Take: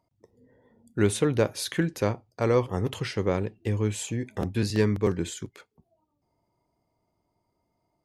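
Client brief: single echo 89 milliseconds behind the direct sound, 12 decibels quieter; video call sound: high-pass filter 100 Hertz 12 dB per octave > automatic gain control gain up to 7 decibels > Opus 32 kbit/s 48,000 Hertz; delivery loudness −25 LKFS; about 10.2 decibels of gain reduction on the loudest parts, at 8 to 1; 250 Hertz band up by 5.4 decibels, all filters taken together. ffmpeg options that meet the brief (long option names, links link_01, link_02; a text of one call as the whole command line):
ffmpeg -i in.wav -af "equalizer=frequency=250:width_type=o:gain=7.5,acompressor=threshold=-25dB:ratio=8,highpass=100,aecho=1:1:89:0.251,dynaudnorm=maxgain=7dB,volume=7.5dB" -ar 48000 -c:a libopus -b:a 32k out.opus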